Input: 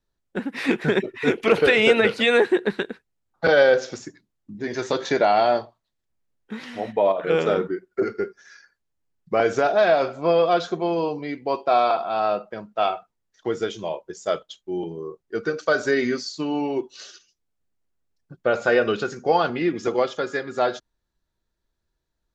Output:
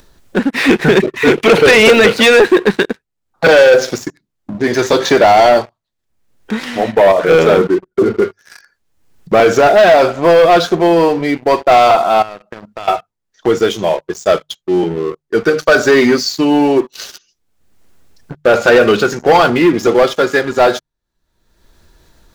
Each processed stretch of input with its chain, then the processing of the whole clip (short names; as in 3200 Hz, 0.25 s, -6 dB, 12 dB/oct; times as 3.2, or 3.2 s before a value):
7.74–8.22 tilt shelf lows +7.5 dB, about 690 Hz + compressor 3:1, threshold -22 dBFS
12.22–12.88 bell 640 Hz -4 dB 1.4 oct + compressor 4:1, threshold -41 dBFS
whole clip: notches 50/100/150 Hz; sample leveller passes 3; upward compressor, threshold -25 dBFS; gain +3.5 dB